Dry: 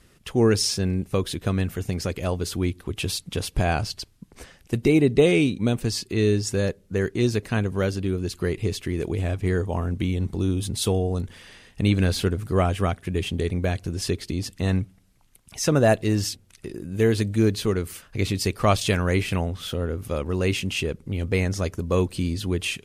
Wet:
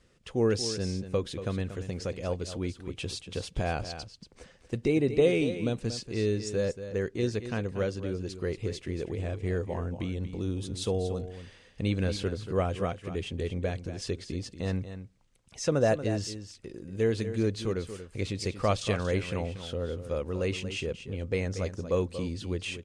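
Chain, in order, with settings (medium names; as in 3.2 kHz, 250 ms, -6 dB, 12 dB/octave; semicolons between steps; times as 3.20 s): low-pass 8.5 kHz 24 dB/octave; peaking EQ 510 Hz +7.5 dB 0.32 oct; delay 234 ms -11 dB; trim -8.5 dB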